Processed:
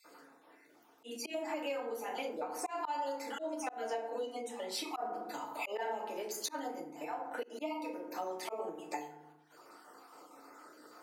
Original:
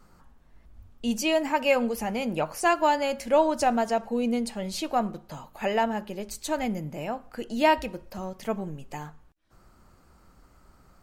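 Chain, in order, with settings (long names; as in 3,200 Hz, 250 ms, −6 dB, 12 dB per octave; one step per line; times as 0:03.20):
time-frequency cells dropped at random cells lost 34%
feedback delay network reverb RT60 0.68 s, low-frequency decay 1.4×, high-frequency decay 0.45×, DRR −3.5 dB
volume swells 324 ms
downward compressor 16 to 1, threshold −36 dBFS, peak gain reduction 23 dB
high-pass filter 350 Hz 24 dB per octave
level +3 dB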